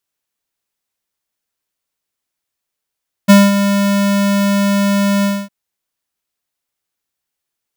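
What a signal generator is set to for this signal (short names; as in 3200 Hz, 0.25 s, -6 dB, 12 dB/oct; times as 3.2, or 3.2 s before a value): ADSR square 200 Hz, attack 21 ms, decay 0.212 s, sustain -9.5 dB, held 1.96 s, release 0.247 s -4 dBFS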